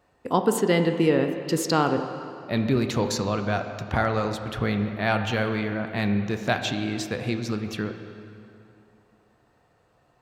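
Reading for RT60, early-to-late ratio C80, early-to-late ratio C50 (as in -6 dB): 2.7 s, 8.5 dB, 7.5 dB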